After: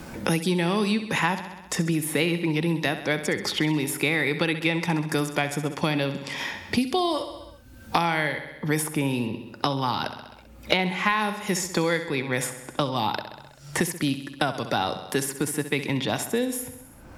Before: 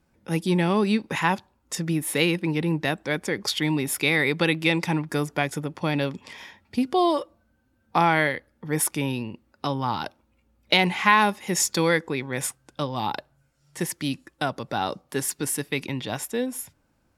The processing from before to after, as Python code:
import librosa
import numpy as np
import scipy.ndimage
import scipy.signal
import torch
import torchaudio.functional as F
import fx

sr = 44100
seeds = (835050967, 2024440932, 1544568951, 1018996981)

p1 = x + fx.echo_feedback(x, sr, ms=65, feedback_pct=54, wet_db=-12.0, dry=0)
p2 = fx.band_squash(p1, sr, depth_pct=100)
y = p2 * 10.0 ** (-1.0 / 20.0)